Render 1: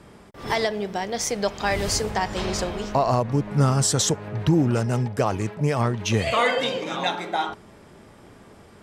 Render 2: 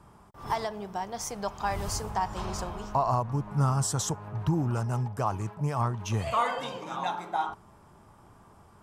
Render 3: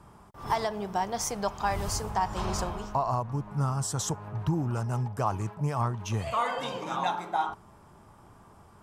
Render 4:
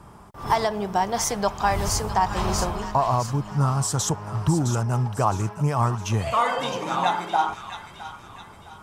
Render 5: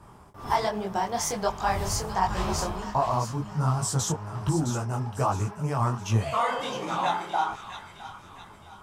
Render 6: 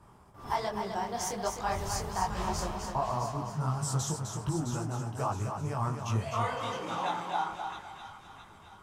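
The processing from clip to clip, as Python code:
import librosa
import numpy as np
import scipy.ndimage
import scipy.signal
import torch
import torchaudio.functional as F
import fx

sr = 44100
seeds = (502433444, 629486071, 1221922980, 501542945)

y1 = fx.graphic_eq_10(x, sr, hz=(250, 500, 1000, 2000, 4000, 8000), db=(-6, -9, 7, -10, -8, -3))
y1 = y1 * 10.0 ** (-3.5 / 20.0)
y2 = fx.rider(y1, sr, range_db=10, speed_s=0.5)
y3 = fx.echo_wet_highpass(y2, sr, ms=662, feedback_pct=41, hz=1400.0, wet_db=-8.0)
y3 = y3 * 10.0 ** (6.5 / 20.0)
y4 = fx.detune_double(y3, sr, cents=45)
y5 = fx.echo_feedback(y4, sr, ms=256, feedback_pct=30, wet_db=-6.0)
y5 = y5 * 10.0 ** (-6.5 / 20.0)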